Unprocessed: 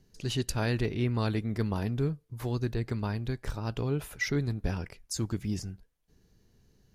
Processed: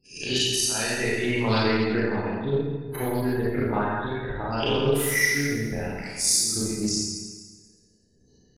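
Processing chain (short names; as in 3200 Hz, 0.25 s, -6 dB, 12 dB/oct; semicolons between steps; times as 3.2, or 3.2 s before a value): spectral swells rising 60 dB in 0.32 s; notch 1100 Hz, Q 10; spectral gate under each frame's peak -25 dB strong; tilt +3 dB/oct; transient shaper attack +10 dB, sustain -7 dB; compressor 10:1, threshold -26 dBFS, peak gain reduction 14.5 dB; random-step tremolo; tempo 0.81×; Schroeder reverb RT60 1.4 s, combs from 28 ms, DRR -8 dB; Doppler distortion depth 0.17 ms; gain +4 dB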